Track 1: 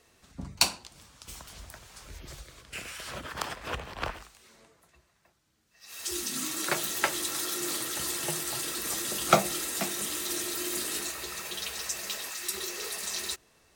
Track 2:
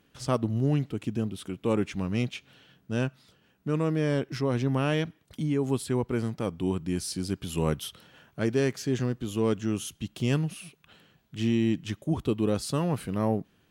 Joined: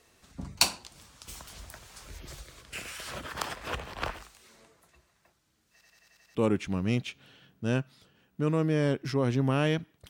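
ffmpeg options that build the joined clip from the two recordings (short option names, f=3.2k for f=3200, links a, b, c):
-filter_complex "[0:a]apad=whole_dur=10.09,atrim=end=10.09,asplit=7[a][b][c][d][e][f][g];[a]atrim=end=5.812[h];[b]atrim=start=5.718:end=5.812[i];[c]atrim=start=5.718:end=5.812[j];[d]atrim=start=5.718:end=5.812[k];[e]atrim=start=5.718:end=5.812[l];[f]atrim=start=5.718:end=5.812[m];[g]atrim=start=5.718:end=5.812[n];[1:a]atrim=start=1.618:end=5.36[o];[h][i]acrossfade=d=0.004:c1=hsin:c2=hsin[p];[p][j]acrossfade=d=0.004:c1=hsin:c2=hsin[q];[q][k]acrossfade=d=0.004:c1=hsin:c2=hsin[r];[r][l]acrossfade=d=0.004:c1=hsin:c2=hsin[s];[s][m]acrossfade=d=0.004:c1=hsin:c2=hsin[t];[t][n]acrossfade=d=0.004:c1=hsin:c2=hsin[u];[u][o]acrossfade=d=0.004:c1=hsin:c2=hsin"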